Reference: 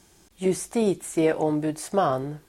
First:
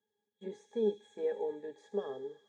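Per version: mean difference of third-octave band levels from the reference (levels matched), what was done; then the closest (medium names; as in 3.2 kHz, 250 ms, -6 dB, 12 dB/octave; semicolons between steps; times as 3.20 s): 9.5 dB: gate -47 dBFS, range -13 dB; cabinet simulation 360–8200 Hz, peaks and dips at 470 Hz +5 dB, 1 kHz -7 dB, 3.9 kHz +5 dB, 6.7 kHz +9 dB; pitch-class resonator G#, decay 0.12 s; on a send: feedback echo behind a high-pass 79 ms, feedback 83%, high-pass 3.2 kHz, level -9 dB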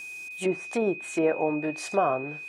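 6.0 dB: high-pass 370 Hz 6 dB/octave; low-pass that closes with the level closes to 1.2 kHz, closed at -23.5 dBFS; treble shelf 3 kHz +8.5 dB; whistle 2.5 kHz -37 dBFS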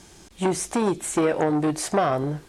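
4.5 dB: treble shelf 5.9 kHz +6.5 dB; compression, threshold -24 dBFS, peak gain reduction 8 dB; distance through air 56 m; transformer saturation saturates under 910 Hz; trim +8.5 dB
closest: third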